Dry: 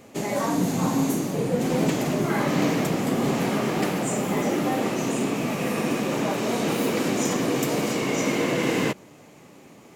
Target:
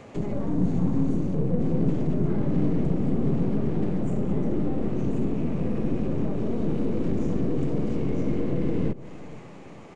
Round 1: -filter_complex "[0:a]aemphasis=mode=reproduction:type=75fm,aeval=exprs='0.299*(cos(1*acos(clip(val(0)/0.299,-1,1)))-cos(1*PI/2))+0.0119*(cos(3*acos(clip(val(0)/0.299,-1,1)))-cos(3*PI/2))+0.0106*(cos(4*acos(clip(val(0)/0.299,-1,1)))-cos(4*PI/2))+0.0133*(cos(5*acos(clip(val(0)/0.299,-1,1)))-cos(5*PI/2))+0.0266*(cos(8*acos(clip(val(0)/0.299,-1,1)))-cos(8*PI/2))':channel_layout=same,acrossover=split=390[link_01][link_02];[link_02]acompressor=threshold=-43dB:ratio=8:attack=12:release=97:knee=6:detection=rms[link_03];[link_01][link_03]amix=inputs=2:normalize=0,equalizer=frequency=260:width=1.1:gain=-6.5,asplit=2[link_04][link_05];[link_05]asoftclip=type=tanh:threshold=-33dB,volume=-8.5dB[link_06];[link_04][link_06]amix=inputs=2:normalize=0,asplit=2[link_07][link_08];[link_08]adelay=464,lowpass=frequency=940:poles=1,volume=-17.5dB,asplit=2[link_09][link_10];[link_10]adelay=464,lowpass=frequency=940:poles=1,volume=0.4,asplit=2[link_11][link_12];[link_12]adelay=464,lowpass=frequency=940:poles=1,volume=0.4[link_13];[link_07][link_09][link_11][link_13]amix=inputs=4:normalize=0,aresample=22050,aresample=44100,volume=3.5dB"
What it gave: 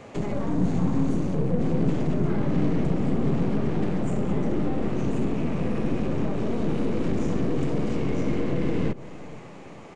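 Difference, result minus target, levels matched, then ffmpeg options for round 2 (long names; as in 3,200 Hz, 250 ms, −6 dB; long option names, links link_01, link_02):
downward compressor: peak gain reduction −7.5 dB
-filter_complex "[0:a]aemphasis=mode=reproduction:type=75fm,aeval=exprs='0.299*(cos(1*acos(clip(val(0)/0.299,-1,1)))-cos(1*PI/2))+0.0119*(cos(3*acos(clip(val(0)/0.299,-1,1)))-cos(3*PI/2))+0.0106*(cos(4*acos(clip(val(0)/0.299,-1,1)))-cos(4*PI/2))+0.0133*(cos(5*acos(clip(val(0)/0.299,-1,1)))-cos(5*PI/2))+0.0266*(cos(8*acos(clip(val(0)/0.299,-1,1)))-cos(8*PI/2))':channel_layout=same,acrossover=split=390[link_01][link_02];[link_02]acompressor=threshold=-51.5dB:ratio=8:attack=12:release=97:knee=6:detection=rms[link_03];[link_01][link_03]amix=inputs=2:normalize=0,equalizer=frequency=260:width=1.1:gain=-6.5,asplit=2[link_04][link_05];[link_05]asoftclip=type=tanh:threshold=-33dB,volume=-8.5dB[link_06];[link_04][link_06]amix=inputs=2:normalize=0,asplit=2[link_07][link_08];[link_08]adelay=464,lowpass=frequency=940:poles=1,volume=-17.5dB,asplit=2[link_09][link_10];[link_10]adelay=464,lowpass=frequency=940:poles=1,volume=0.4,asplit=2[link_11][link_12];[link_12]adelay=464,lowpass=frequency=940:poles=1,volume=0.4[link_13];[link_07][link_09][link_11][link_13]amix=inputs=4:normalize=0,aresample=22050,aresample=44100,volume=3.5dB"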